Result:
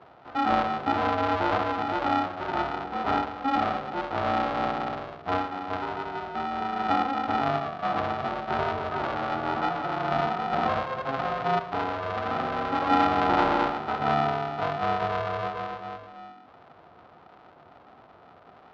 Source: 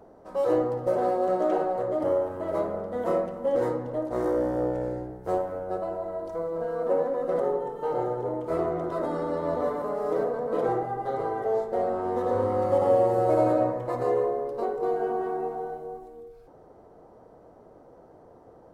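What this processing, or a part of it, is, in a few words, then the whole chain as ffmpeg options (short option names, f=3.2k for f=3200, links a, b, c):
ring modulator pedal into a guitar cabinet: -filter_complex "[0:a]asettb=1/sr,asplit=3[a][b][c];[a]atrim=end=11.594[d];[b]atrim=start=11.59:end=12.91,asetpts=PTS-STARTPTS,afade=t=in:d=0.004:c=qsin,afade=t=out:st=1.316:d=0.004:c=qsin,adynamicequalizer=threshold=0.0178:dfrequency=490:dqfactor=1.8:tfrequency=490:tqfactor=1.8:attack=5:release=100:ratio=0.375:range=3:mode=cutabove:tftype=bell[e];[c]atrim=start=12.906[f];[d][e]acrossfade=d=0.004:c1=hsin:c2=qsin[g];[g][f]acrossfade=d=0.004:c1=qsin:c2=hsin,aeval=exprs='val(0)*sgn(sin(2*PI*270*n/s))':c=same,highpass=83,equalizer=f=200:t=q:w=4:g=-5,equalizer=f=710:t=q:w=4:g=6,equalizer=f=1.3k:t=q:w=4:g=8,lowpass=f=4k:w=0.5412,lowpass=f=4k:w=1.3066,volume=-2.5dB"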